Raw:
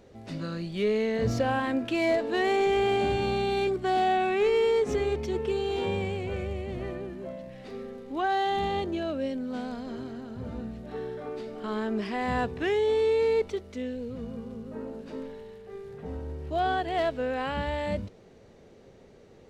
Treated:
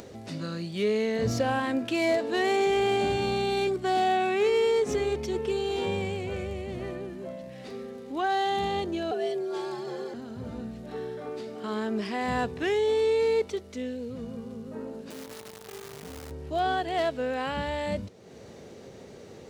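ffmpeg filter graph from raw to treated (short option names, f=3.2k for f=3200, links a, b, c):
-filter_complex "[0:a]asettb=1/sr,asplit=3[a][b][c];[a]atrim=end=9.114[d];[b]atrim=start=9.11:end=10.14,asetpts=PTS-STARTPTS,afade=t=in:d=0.004:c=qsin,afade=t=out:st=1.026:d=0.004:c=qsin,aecho=1:1:3.1:0.66,atrim=end_sample=45423,afreqshift=130[e];[c]atrim=start=10.136[f];[d][e]acrossfade=d=0.004:c1=hsin:c2=qsin[g];[g][f]acrossfade=d=0.004:c1=qsin:c2=hsin,asettb=1/sr,asplit=3[h][i][j];[h]atrim=end=15.104[k];[i]atrim=start=15.1:end=16.31,asetpts=PTS-STARTPTS,afade=t=in:d=0.004:c=qsin,afade=t=out:st=1.206:d=0.004:c=qsin,equalizer=f=3.2k:w=1.3:g=4,acompressor=threshold=-43dB:ratio=2:attack=3.2:release=140:knee=1:detection=peak,acrusher=bits=8:dc=4:mix=0:aa=0.000001[l];[j]atrim=start=16.306[m];[k][l]acrossfade=d=0.004:c1=hsin:c2=qsin[n];[n][m]acrossfade=d=0.004:c1=qsin:c2=hsin,highpass=78,bass=f=250:g=0,treble=f=4k:g=6,acompressor=mode=upward:threshold=-37dB:ratio=2.5"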